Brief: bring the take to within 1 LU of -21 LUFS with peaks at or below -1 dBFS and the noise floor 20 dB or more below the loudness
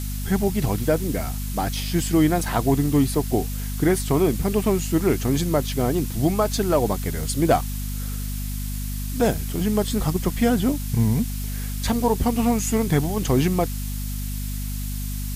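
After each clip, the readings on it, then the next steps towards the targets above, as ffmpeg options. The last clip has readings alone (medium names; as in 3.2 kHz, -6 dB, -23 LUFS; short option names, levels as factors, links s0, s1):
hum 50 Hz; highest harmonic 250 Hz; hum level -26 dBFS; noise floor -28 dBFS; noise floor target -43 dBFS; loudness -23.0 LUFS; peak level -7.0 dBFS; loudness target -21.0 LUFS
-> -af "bandreject=f=50:t=h:w=6,bandreject=f=100:t=h:w=6,bandreject=f=150:t=h:w=6,bandreject=f=200:t=h:w=6,bandreject=f=250:t=h:w=6"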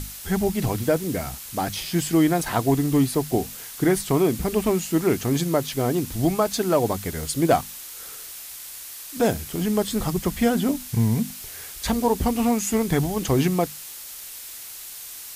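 hum not found; noise floor -39 dBFS; noise floor target -43 dBFS
-> -af "afftdn=nr=6:nf=-39"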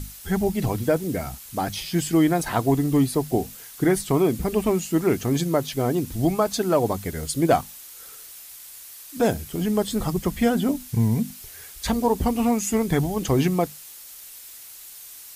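noise floor -43 dBFS; noise floor target -44 dBFS
-> -af "afftdn=nr=6:nf=-43"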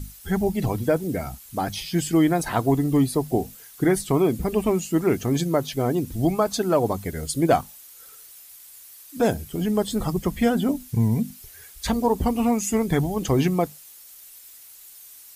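noise floor -46 dBFS; loudness -23.5 LUFS; peak level -7.5 dBFS; loudness target -21.0 LUFS
-> -af "volume=1.33"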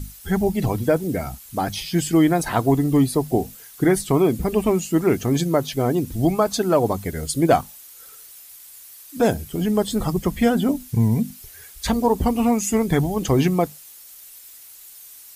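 loudness -21.0 LUFS; peak level -5.0 dBFS; noise floor -44 dBFS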